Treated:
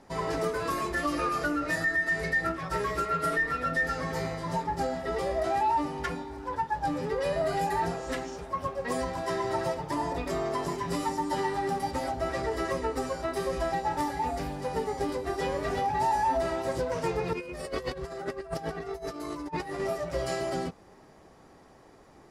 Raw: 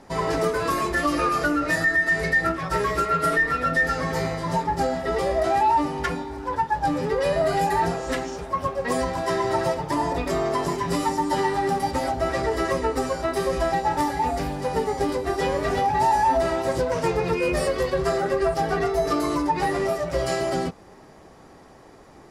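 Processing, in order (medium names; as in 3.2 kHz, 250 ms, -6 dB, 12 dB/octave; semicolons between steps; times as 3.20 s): 17.33–19.80 s: compressor with a negative ratio -28 dBFS, ratio -0.5; trim -6.5 dB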